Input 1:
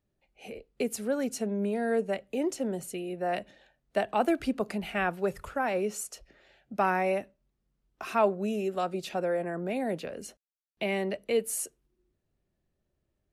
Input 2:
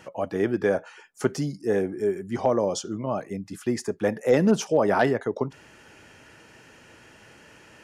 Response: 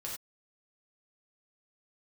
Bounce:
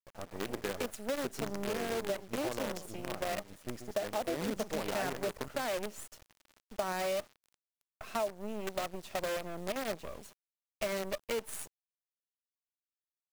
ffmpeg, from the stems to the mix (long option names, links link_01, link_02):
-filter_complex "[0:a]equalizer=frequency=610:width=5.8:gain=10,volume=-6dB[link_01];[1:a]adynamicequalizer=threshold=0.00398:dfrequency=3300:dqfactor=1.2:tfrequency=3300:tqfactor=1.2:attack=5:release=100:ratio=0.375:range=2.5:mode=cutabove:tftype=bell,volume=-13dB,asplit=2[link_02][link_03];[link_03]volume=-9dB,aecho=0:1:135:1[link_04];[link_01][link_02][link_04]amix=inputs=3:normalize=0,acrusher=bits=6:dc=4:mix=0:aa=0.000001,acompressor=threshold=-30dB:ratio=12"